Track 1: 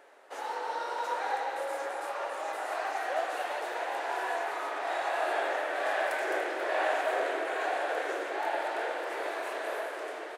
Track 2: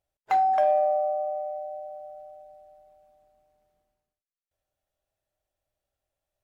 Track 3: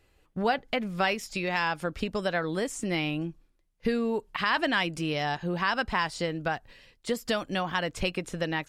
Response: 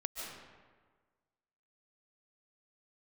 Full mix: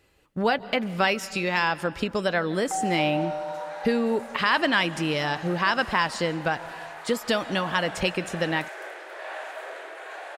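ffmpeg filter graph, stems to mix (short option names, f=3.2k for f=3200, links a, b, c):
-filter_complex "[0:a]highpass=f=720:p=1,adelay=2500,volume=-4.5dB[a];[1:a]lowpass=1.3k,adelay=2400,volume=-6dB[b];[2:a]volume=3dB,asplit=2[c][d];[d]volume=-14.5dB[e];[3:a]atrim=start_sample=2205[f];[e][f]afir=irnorm=-1:irlink=0[g];[a][b][c][g]amix=inputs=4:normalize=0,highpass=f=98:p=1,bandreject=f=730:w=22"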